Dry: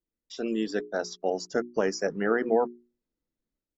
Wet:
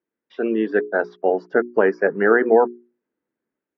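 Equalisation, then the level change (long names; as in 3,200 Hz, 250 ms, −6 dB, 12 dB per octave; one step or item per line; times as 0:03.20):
loudspeaker in its box 210–2,400 Hz, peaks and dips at 400 Hz +5 dB, 900 Hz +3 dB, 1,600 Hz +6 dB
+7.5 dB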